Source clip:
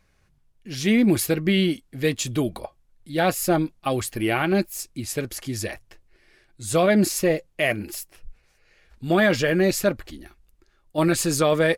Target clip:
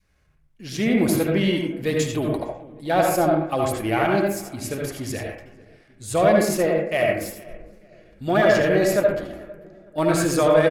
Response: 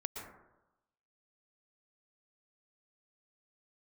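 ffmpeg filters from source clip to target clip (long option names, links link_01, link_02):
-filter_complex "[0:a]asplit=2[link_01][link_02];[link_02]adelay=493,lowpass=frequency=1300:poles=1,volume=-20dB,asplit=2[link_03][link_04];[link_04]adelay=493,lowpass=frequency=1300:poles=1,volume=0.48,asplit=2[link_05][link_06];[link_06]adelay=493,lowpass=frequency=1300:poles=1,volume=0.48,asplit=2[link_07][link_08];[link_08]adelay=493,lowpass=frequency=1300:poles=1,volume=0.48[link_09];[link_01][link_03][link_05][link_07][link_09]amix=inputs=5:normalize=0,adynamicequalizer=threshold=0.0224:dfrequency=770:dqfactor=0.81:tfrequency=770:tqfactor=0.81:attack=5:release=100:ratio=0.375:range=3.5:mode=boostabove:tftype=bell,asplit=2[link_10][link_11];[link_11]asoftclip=type=tanh:threshold=-20dB,volume=-6dB[link_12];[link_10][link_12]amix=inputs=2:normalize=0[link_13];[1:a]atrim=start_sample=2205,asetrate=66150,aresample=44100[link_14];[link_13][link_14]afir=irnorm=-1:irlink=0,atempo=1.1"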